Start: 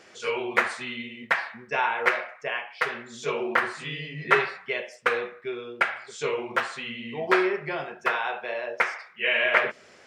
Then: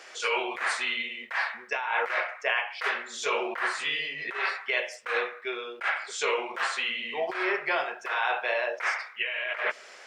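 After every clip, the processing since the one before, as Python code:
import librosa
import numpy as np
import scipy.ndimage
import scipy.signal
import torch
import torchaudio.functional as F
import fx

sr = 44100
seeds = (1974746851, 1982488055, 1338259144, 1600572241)

y = scipy.signal.sosfilt(scipy.signal.butter(2, 640.0, 'highpass', fs=sr, output='sos'), x)
y = fx.over_compress(y, sr, threshold_db=-31.0, ratio=-1.0)
y = y * librosa.db_to_amplitude(2.5)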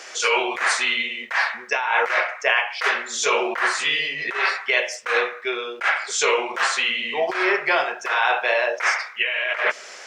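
y = fx.peak_eq(x, sr, hz=6200.0, db=6.5, octaves=0.66)
y = y * librosa.db_to_amplitude(7.5)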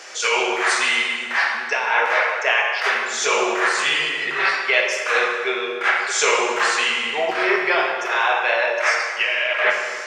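y = fx.rider(x, sr, range_db=10, speed_s=2.0)
y = fx.rev_plate(y, sr, seeds[0], rt60_s=1.9, hf_ratio=0.8, predelay_ms=0, drr_db=1.5)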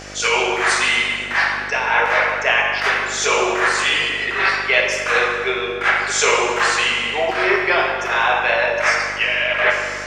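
y = fx.dmg_buzz(x, sr, base_hz=50.0, harmonics=15, level_db=-41.0, tilt_db=-2, odd_only=False)
y = fx.attack_slew(y, sr, db_per_s=240.0)
y = y * librosa.db_to_amplitude(2.0)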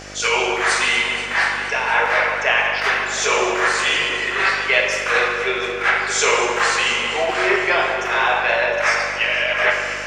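y = fx.echo_heads(x, sr, ms=238, heads='all three', feedback_pct=43, wet_db=-17.0)
y = y * librosa.db_to_amplitude(-1.0)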